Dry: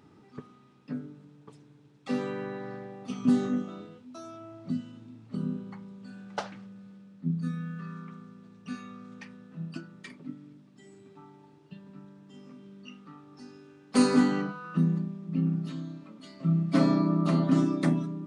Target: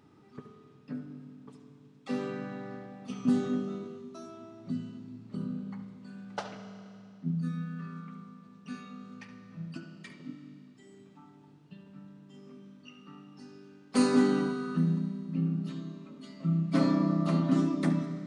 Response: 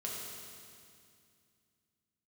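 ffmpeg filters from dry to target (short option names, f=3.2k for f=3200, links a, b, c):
-filter_complex "[0:a]asplit=2[a][b];[b]lowpass=f=7.2k:w=0.5412,lowpass=f=7.2k:w=1.3066[c];[1:a]atrim=start_sample=2205,adelay=71[d];[c][d]afir=irnorm=-1:irlink=0,volume=-8dB[e];[a][e]amix=inputs=2:normalize=0,volume=-3dB"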